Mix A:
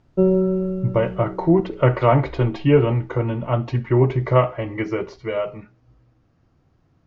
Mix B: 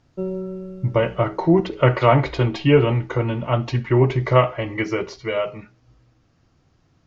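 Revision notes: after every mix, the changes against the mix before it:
background -10.5 dB; master: add high shelf 2500 Hz +11.5 dB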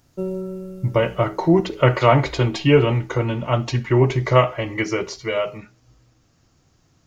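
master: remove air absorption 140 m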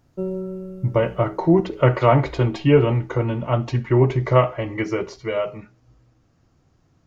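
master: add high shelf 2500 Hz -11.5 dB

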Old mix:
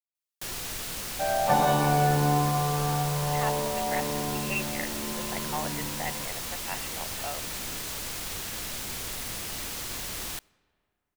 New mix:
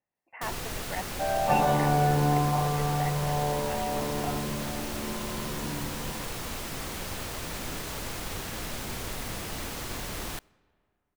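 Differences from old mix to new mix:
speech: entry -3.00 s; first sound +5.0 dB; master: add high shelf 2100 Hz -10 dB

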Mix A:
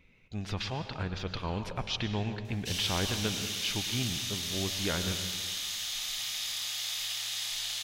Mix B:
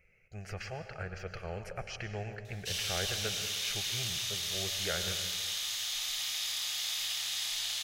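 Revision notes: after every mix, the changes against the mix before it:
speech: add fixed phaser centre 990 Hz, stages 6; master: add low shelf 210 Hz -5.5 dB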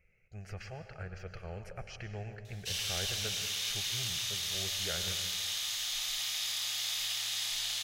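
speech -5.5 dB; master: add low shelf 210 Hz +5.5 dB

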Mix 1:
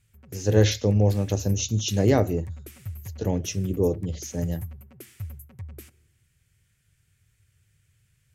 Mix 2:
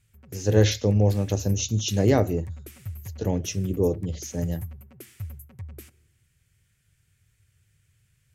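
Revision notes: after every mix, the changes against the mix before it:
none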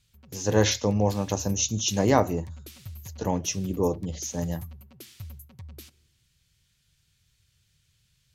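background: add graphic EQ 1000/2000/4000/8000 Hz -10/-5/+11/-5 dB; master: add fifteen-band EQ 100 Hz -7 dB, 400 Hz -4 dB, 1000 Hz +12 dB, 6300 Hz +4 dB

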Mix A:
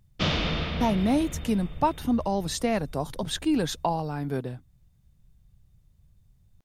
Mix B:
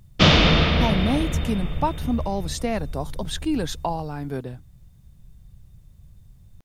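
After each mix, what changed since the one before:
background +11.0 dB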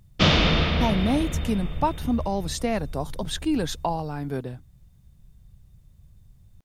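reverb: off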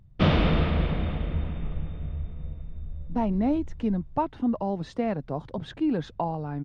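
speech: entry +2.35 s; master: add tape spacing loss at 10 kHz 35 dB

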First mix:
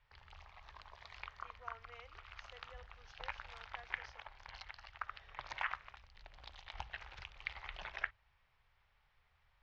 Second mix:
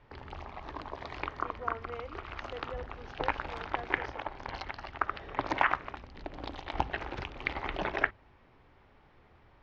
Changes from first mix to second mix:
background +5.0 dB; master: remove passive tone stack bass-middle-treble 10-0-10

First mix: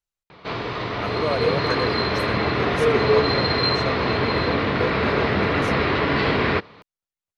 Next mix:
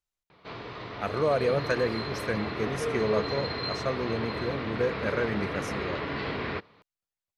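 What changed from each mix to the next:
background -12.0 dB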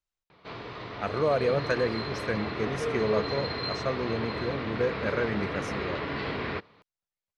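speech: add Bessel low-pass 7100 Hz, order 2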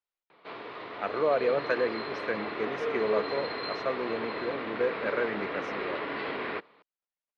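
master: add three-band isolator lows -20 dB, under 240 Hz, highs -23 dB, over 4200 Hz

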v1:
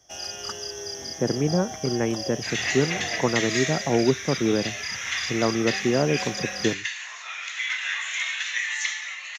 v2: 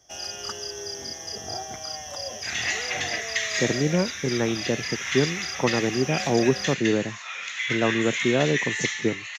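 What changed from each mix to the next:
speech: entry +2.40 s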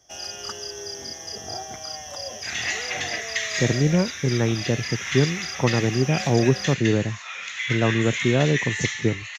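speech: remove HPF 200 Hz 12 dB/oct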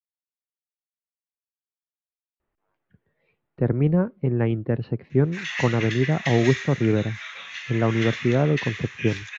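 first sound: muted; second sound: entry +2.90 s; master: add air absorption 140 m

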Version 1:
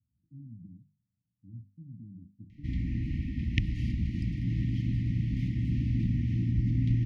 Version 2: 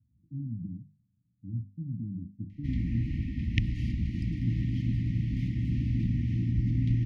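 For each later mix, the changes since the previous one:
speech +10.5 dB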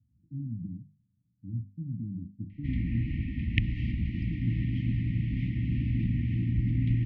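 master: add synth low-pass 2600 Hz, resonance Q 1.6

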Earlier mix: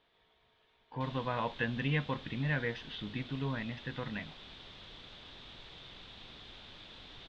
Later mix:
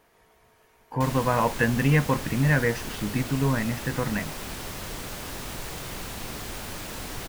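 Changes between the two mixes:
background +6.5 dB; master: remove ladder low-pass 3800 Hz, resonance 75%

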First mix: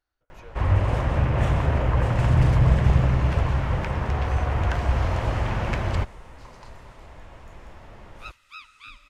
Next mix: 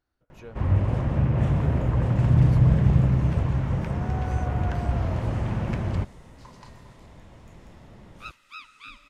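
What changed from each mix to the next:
first sound -9.0 dB; second sound: add bell 78 Hz -13 dB 2.4 oct; master: add bell 180 Hz +13 dB 2.4 oct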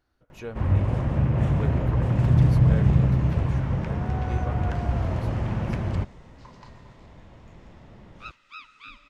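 speech +7.5 dB; second sound: add running mean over 4 samples

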